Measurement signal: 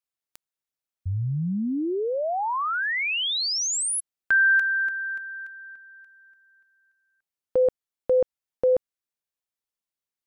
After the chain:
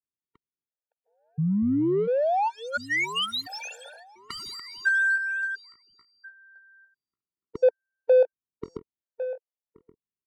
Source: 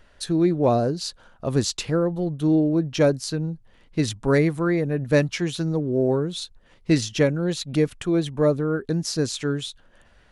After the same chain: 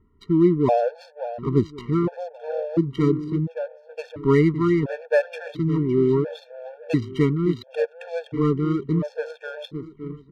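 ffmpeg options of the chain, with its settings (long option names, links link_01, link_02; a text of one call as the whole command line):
ffmpeg -i in.wav -filter_complex "[0:a]acrossover=split=1700[link_01][link_02];[link_02]alimiter=limit=-22.5dB:level=0:latency=1:release=126[link_03];[link_01][link_03]amix=inputs=2:normalize=0,highpass=frequency=80:poles=1,asplit=2[link_04][link_05];[link_05]aecho=0:1:563|1126|1689|2252:0.251|0.111|0.0486|0.0214[link_06];[link_04][link_06]amix=inputs=2:normalize=0,adynamicsmooth=sensitivity=4.5:basefreq=600,aemphasis=mode=reproduction:type=50fm,afftfilt=real='re*gt(sin(2*PI*0.72*pts/sr)*(1-2*mod(floor(b*sr/1024/460),2)),0)':imag='im*gt(sin(2*PI*0.72*pts/sr)*(1-2*mod(floor(b*sr/1024/460),2)),0)':win_size=1024:overlap=0.75,volume=3dB" out.wav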